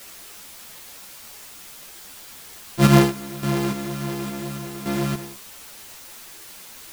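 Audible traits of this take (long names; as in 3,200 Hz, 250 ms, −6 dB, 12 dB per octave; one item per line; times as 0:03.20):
a buzz of ramps at a fixed pitch in blocks of 128 samples
sample-and-hold tremolo, depth 85%
a quantiser's noise floor 8 bits, dither triangular
a shimmering, thickened sound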